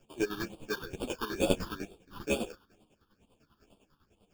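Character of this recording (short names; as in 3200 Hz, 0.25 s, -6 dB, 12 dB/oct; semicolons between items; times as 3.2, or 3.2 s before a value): aliases and images of a low sample rate 2000 Hz, jitter 0%; phasing stages 6, 2.2 Hz, lowest notch 590–1700 Hz; chopped level 10 Hz, depth 65%, duty 40%; a shimmering, thickened sound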